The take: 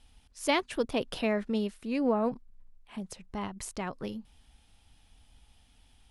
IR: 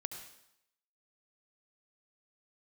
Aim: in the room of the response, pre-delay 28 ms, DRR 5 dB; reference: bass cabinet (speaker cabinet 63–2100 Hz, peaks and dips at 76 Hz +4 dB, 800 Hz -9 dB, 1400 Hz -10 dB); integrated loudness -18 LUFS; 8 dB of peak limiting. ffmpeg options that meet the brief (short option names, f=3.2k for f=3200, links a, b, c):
-filter_complex "[0:a]alimiter=limit=-22dB:level=0:latency=1,asplit=2[a][b];[1:a]atrim=start_sample=2205,adelay=28[c];[b][c]afir=irnorm=-1:irlink=0,volume=-3.5dB[d];[a][d]amix=inputs=2:normalize=0,highpass=f=63:w=0.5412,highpass=f=63:w=1.3066,equalizer=f=76:t=q:w=4:g=4,equalizer=f=800:t=q:w=4:g=-9,equalizer=f=1.4k:t=q:w=4:g=-10,lowpass=f=2.1k:w=0.5412,lowpass=f=2.1k:w=1.3066,volume=17dB"